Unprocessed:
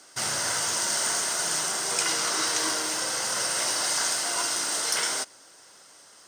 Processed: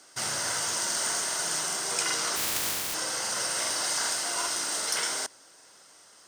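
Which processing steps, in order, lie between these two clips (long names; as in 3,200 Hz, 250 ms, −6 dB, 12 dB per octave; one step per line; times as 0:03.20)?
0:02.35–0:02.93: compressing power law on the bin magnitudes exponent 0.13
regular buffer underruns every 0.39 s, samples 2,048, repeat, from 0:00.88
level −2.5 dB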